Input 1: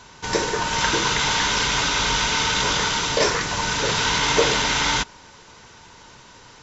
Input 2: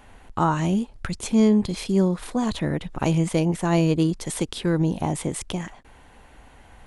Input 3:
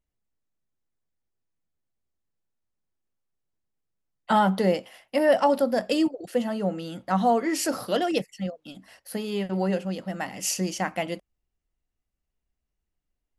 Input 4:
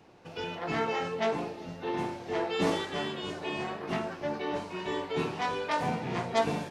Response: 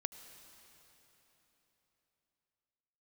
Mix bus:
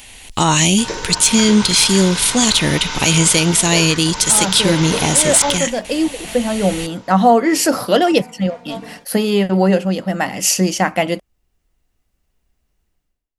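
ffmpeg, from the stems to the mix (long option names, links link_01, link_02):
-filter_complex "[0:a]adelay=550,volume=-10dB[link_01];[1:a]aexciter=amount=8.8:drive=4.1:freq=2100,asoftclip=type=tanh:threshold=-1.5dB,volume=2.5dB[link_02];[2:a]dynaudnorm=framelen=170:gausssize=5:maxgain=10dB,volume=-9.5dB[link_03];[3:a]aecho=1:1:4.2:0.65,adelay=2350,volume=-17dB[link_04];[link_02][link_03]amix=inputs=2:normalize=0,dynaudnorm=framelen=640:gausssize=3:maxgain=5dB,alimiter=limit=-9dB:level=0:latency=1:release=88,volume=0dB[link_05];[link_01][link_04][link_05]amix=inputs=3:normalize=0,dynaudnorm=framelen=100:gausssize=7:maxgain=10dB"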